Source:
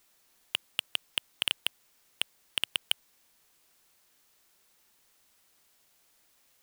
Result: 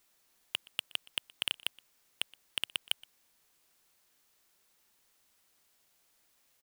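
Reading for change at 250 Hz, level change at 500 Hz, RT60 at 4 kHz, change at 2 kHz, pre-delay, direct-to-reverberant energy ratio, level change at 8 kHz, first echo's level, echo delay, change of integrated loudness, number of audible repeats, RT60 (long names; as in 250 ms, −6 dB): −4.0 dB, −4.0 dB, no reverb audible, −4.0 dB, no reverb audible, no reverb audible, −4.0 dB, −23.5 dB, 121 ms, −4.0 dB, 1, no reverb audible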